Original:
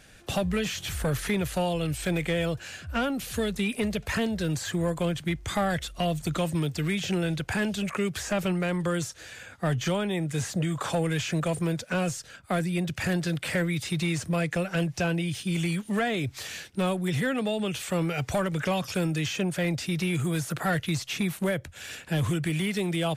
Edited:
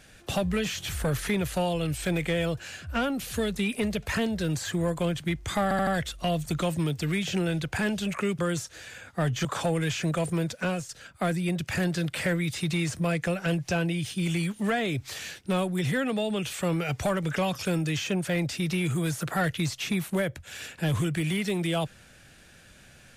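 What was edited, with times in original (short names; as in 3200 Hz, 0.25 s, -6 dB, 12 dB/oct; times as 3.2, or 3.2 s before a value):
5.63 stutter 0.08 s, 4 plays
8.15–8.84 cut
9.9–10.74 cut
11.93–12.18 fade out, to -9.5 dB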